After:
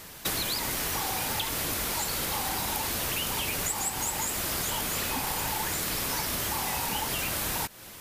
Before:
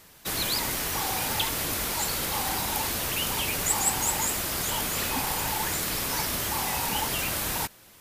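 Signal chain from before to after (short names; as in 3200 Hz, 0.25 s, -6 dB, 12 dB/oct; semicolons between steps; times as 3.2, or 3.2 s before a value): compressor 12:1, threshold -35 dBFS, peak gain reduction 16 dB; gain +8 dB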